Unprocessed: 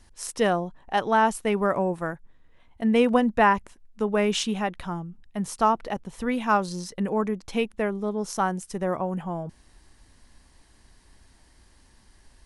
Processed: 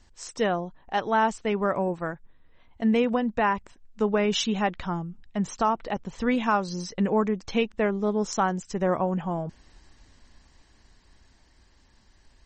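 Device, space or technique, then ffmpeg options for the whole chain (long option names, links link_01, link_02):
low-bitrate web radio: -af "dynaudnorm=framelen=260:gausssize=21:maxgain=6dB,alimiter=limit=-10.5dB:level=0:latency=1:release=450,volume=-2dB" -ar 44100 -c:a libmp3lame -b:a 32k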